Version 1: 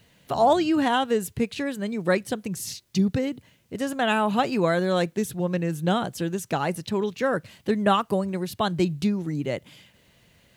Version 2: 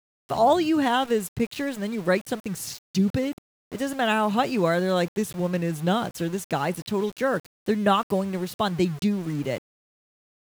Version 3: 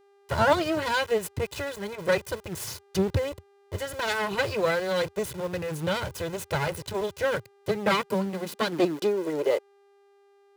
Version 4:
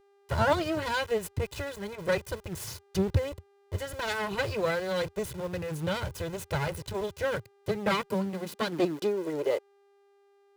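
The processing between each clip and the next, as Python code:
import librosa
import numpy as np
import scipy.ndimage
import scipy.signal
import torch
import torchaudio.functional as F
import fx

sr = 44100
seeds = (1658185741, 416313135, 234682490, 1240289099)

y1 = np.where(np.abs(x) >= 10.0 ** (-37.0 / 20.0), x, 0.0)
y2 = fx.lower_of_two(y1, sr, delay_ms=2.0)
y2 = fx.filter_sweep_highpass(y2, sr, from_hz=85.0, to_hz=750.0, start_s=7.08, end_s=10.45, q=3.0)
y2 = fx.dmg_buzz(y2, sr, base_hz=400.0, harmonics=34, level_db=-60.0, tilt_db=-9, odd_only=False)
y3 = fx.low_shelf(y2, sr, hz=95.0, db=11.0)
y3 = y3 * librosa.db_to_amplitude(-4.0)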